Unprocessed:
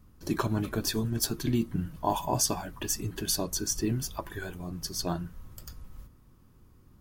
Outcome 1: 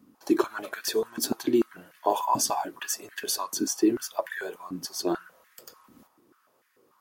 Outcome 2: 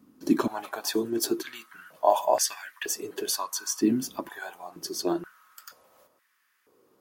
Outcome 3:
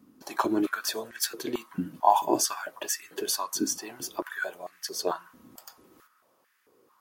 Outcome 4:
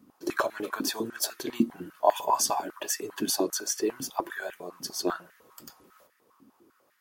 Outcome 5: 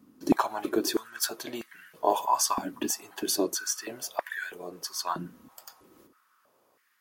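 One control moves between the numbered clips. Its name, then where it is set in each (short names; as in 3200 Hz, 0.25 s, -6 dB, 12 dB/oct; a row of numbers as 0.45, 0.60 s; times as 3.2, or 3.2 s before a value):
stepped high-pass, rate: 6.8, 2.1, 4.5, 10, 3.1 Hz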